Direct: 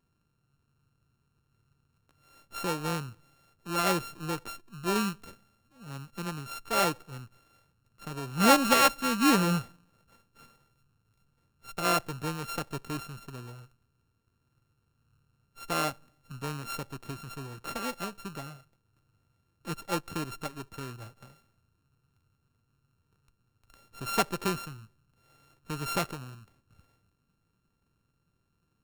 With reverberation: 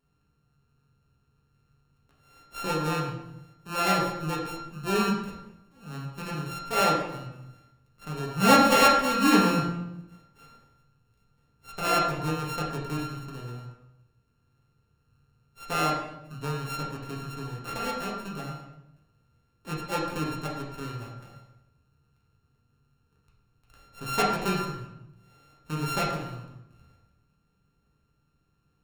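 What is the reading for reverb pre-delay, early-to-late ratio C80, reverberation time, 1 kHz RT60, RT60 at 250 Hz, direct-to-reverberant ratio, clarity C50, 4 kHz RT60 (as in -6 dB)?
6 ms, 5.5 dB, 0.85 s, 0.80 s, 1.0 s, -5.0 dB, 3.0 dB, 0.65 s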